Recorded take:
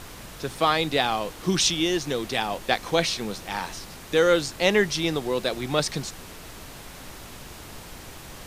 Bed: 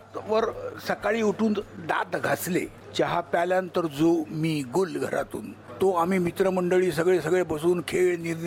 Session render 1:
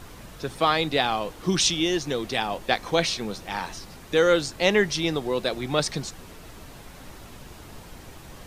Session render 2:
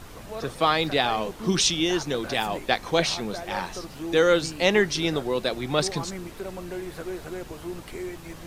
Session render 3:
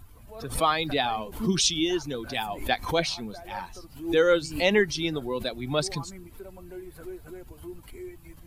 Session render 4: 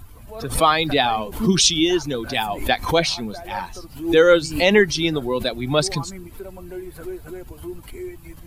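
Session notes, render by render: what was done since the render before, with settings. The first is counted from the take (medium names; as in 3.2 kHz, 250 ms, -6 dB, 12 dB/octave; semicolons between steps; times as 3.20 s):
noise reduction 6 dB, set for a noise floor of -43 dBFS
add bed -12.5 dB
expander on every frequency bin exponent 1.5; swell ahead of each attack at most 120 dB/s
trim +7.5 dB; peak limiter -3 dBFS, peak gain reduction 2.5 dB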